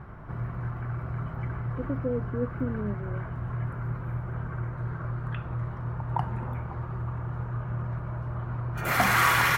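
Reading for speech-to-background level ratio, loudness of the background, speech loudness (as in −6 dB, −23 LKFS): −3.5 dB, −31.0 LKFS, −34.5 LKFS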